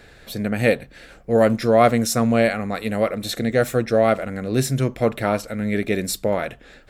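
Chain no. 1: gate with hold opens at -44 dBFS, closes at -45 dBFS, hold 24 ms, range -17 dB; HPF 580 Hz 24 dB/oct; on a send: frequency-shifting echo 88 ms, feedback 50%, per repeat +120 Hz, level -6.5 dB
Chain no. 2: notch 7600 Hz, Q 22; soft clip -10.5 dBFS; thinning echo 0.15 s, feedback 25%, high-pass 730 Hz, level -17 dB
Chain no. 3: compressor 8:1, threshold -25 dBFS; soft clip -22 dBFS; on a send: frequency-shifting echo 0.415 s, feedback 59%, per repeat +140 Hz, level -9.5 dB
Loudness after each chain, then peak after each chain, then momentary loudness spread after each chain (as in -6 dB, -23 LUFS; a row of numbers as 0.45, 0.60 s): -24.0, -22.5, -31.0 LUFS; -4.5, -10.0, -19.5 dBFS; 11, 8, 4 LU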